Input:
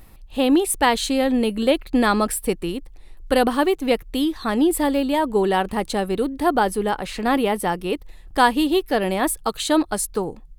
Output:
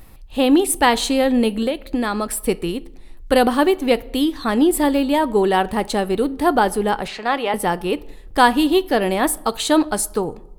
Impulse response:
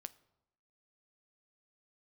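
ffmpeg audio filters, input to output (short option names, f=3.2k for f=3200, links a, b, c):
-filter_complex "[0:a]asettb=1/sr,asplit=3[a][b][c];[a]atrim=end=1.484[d];[b]atrim=start=1.48:end=2.38,asetpts=PTS-STARTPTS,afade=t=in:d=0.004:c=qsin,afade=t=out:st=0.896:d=0.004:c=qsin,acompressor=threshold=-21dB:ratio=6[e];[c]atrim=start=2.376[f];[d][e]acrossfade=d=0.004:c1=hsin:c2=qsin[g];[g][f]acrossfade=d=0.004:c1=qsin:c2=hsin,asettb=1/sr,asplit=3[h][i][j];[h]atrim=end=7.084[k];[i]atrim=start=7.08:end=7.54,asetpts=PTS-STARTPTS,afade=t=in:d=0.004:c=qsin,afade=t=out:st=0.456:d=0.004:c=qsin,acrossover=split=470 6400:gain=0.2 1 0.141[l][m][n];[l][m][n]amix=inputs=3:normalize=0[o];[j]atrim=start=7.536[p];[k][o]acrossfade=d=0.004:c1=hsin:c2=qsin[q];[q][p]acrossfade=d=0.004:c1=qsin:c2=hsin,asplit=2[r][s];[1:a]atrim=start_sample=2205[t];[s][t]afir=irnorm=-1:irlink=0,volume=17.5dB[u];[r][u]amix=inputs=2:normalize=0,volume=-11.5dB"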